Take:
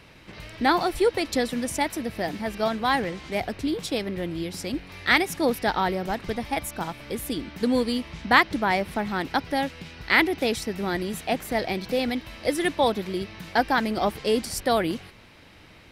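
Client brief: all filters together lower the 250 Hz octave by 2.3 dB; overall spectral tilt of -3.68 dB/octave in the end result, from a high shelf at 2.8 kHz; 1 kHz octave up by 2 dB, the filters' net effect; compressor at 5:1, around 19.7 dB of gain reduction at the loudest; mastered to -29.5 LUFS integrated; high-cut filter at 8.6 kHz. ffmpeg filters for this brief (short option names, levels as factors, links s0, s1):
-af "lowpass=8600,equalizer=f=250:t=o:g=-3,equalizer=f=1000:t=o:g=3.5,highshelf=f=2800:g=-5.5,acompressor=threshold=0.02:ratio=5,volume=2.66"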